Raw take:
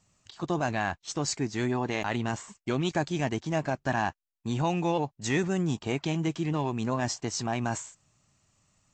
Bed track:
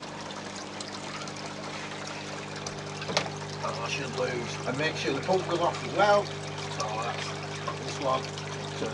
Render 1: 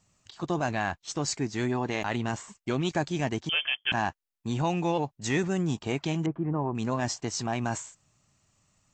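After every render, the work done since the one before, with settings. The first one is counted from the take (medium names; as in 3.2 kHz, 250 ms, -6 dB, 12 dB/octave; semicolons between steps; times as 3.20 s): 3.49–3.92 s: frequency inversion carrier 3.3 kHz; 6.26–6.75 s: low-pass 1.4 kHz 24 dB/octave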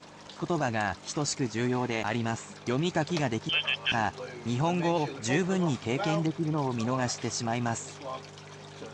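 add bed track -10.5 dB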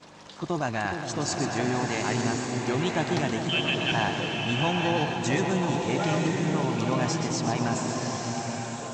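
on a send: two-band feedback delay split 720 Hz, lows 417 ms, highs 125 ms, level -7.5 dB; on the sum: swelling reverb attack 1010 ms, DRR 2 dB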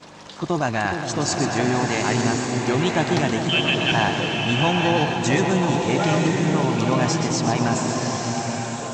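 trim +6 dB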